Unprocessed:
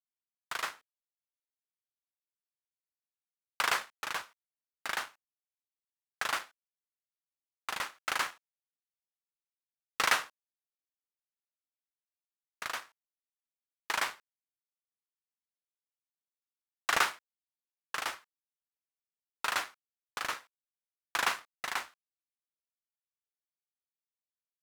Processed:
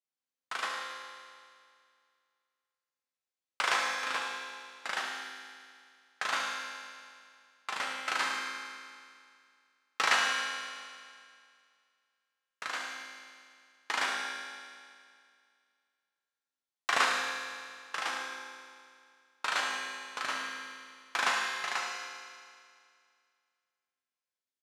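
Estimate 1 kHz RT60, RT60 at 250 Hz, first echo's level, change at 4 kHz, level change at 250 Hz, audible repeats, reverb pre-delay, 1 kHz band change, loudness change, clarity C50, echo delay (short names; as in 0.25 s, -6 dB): 2.2 s, 2.2 s, -9.5 dB, +3.0 dB, +3.5 dB, 2, 4 ms, +2.5 dB, +0.5 dB, 0.5 dB, 73 ms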